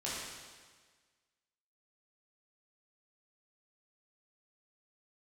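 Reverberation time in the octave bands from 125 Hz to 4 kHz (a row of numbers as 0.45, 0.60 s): 1.5, 1.5, 1.5, 1.5, 1.5, 1.5 s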